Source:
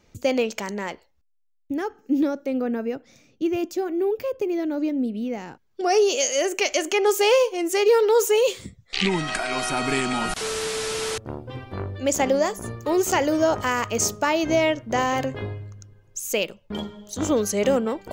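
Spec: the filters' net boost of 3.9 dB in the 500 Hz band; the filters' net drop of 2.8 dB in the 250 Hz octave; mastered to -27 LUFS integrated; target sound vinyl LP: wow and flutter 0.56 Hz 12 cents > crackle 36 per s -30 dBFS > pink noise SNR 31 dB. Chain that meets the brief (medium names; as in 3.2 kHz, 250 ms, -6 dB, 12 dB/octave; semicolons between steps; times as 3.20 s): peaking EQ 250 Hz -7 dB; peaking EQ 500 Hz +6.5 dB; wow and flutter 0.56 Hz 12 cents; crackle 36 per s -30 dBFS; pink noise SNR 31 dB; trim -6 dB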